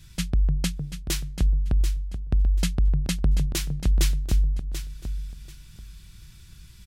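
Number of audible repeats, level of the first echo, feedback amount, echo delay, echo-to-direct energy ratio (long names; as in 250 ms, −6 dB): 2, −10.0 dB, 21%, 737 ms, −10.0 dB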